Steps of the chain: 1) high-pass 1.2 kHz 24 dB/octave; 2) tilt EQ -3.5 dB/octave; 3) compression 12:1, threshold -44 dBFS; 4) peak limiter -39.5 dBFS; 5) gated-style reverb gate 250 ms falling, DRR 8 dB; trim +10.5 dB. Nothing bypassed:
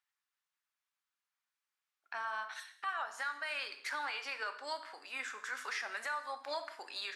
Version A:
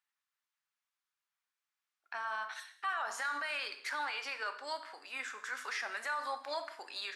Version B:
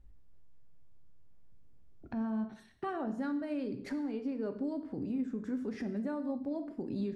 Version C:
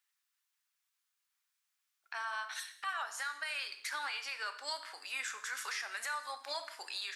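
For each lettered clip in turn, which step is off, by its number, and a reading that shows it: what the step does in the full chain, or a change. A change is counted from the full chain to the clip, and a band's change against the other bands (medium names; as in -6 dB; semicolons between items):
3, mean gain reduction 5.0 dB; 1, crest factor change -4.0 dB; 2, 8 kHz band +8.0 dB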